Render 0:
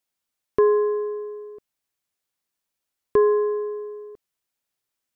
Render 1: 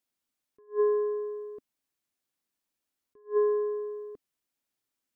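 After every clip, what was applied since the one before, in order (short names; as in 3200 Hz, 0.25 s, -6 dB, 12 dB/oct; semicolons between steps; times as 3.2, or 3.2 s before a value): bell 270 Hz +7.5 dB 0.7 oct; attack slew limiter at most 280 dB/s; gain -3.5 dB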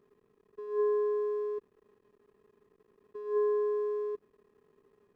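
per-bin compression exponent 0.4; backlash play -51.5 dBFS; gain -4.5 dB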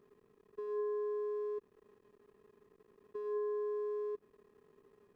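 compressor 3:1, threshold -39 dBFS, peak gain reduction 10 dB; gain +1 dB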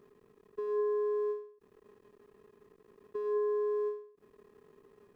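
ending taper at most 120 dB/s; gain +5.5 dB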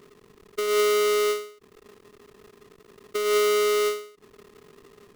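half-waves squared off; gain +6.5 dB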